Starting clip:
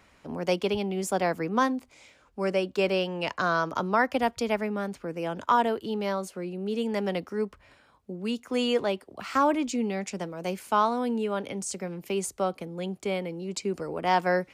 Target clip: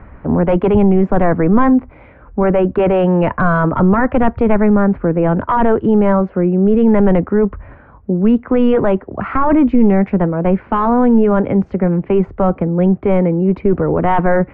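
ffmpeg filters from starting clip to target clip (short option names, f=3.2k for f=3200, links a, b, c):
-af "lowpass=f=1.8k:w=0.5412,lowpass=f=1.8k:w=1.3066,apsyclip=26.5dB,aemphasis=mode=reproduction:type=bsi,volume=-10dB"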